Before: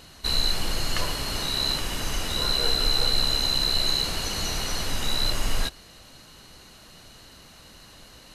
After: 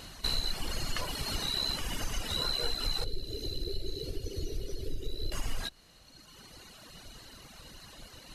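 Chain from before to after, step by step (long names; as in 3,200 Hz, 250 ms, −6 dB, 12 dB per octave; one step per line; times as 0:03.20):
sub-octave generator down 2 octaves, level −2 dB
reverb reduction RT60 1.8 s
0:03.04–0:05.32: drawn EQ curve 120 Hz 0 dB, 200 Hz −12 dB, 400 Hz +9 dB, 870 Hz −28 dB, 4,300 Hz −11 dB, 7,900 Hz −17 dB, 12,000 Hz −11 dB
downward compressor 2.5 to 1, threshold −33 dBFS, peak gain reduction 10.5 dB
level +1.5 dB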